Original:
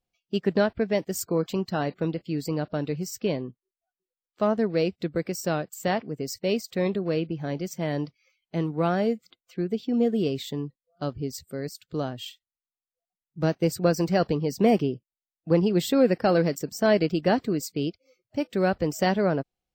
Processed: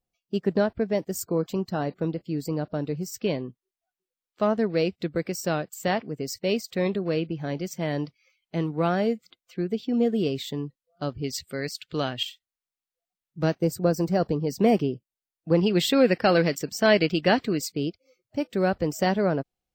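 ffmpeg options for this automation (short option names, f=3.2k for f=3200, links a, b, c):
-af "asetnsamples=n=441:p=0,asendcmd='3.14 equalizer g 2;11.24 equalizer g 14;12.23 equalizer g 2.5;13.59 equalizer g -8;14.47 equalizer g -0.5;15.59 equalizer g 8.5;17.72 equalizer g -1',equalizer=f=2.7k:t=o:w=2:g=-5.5"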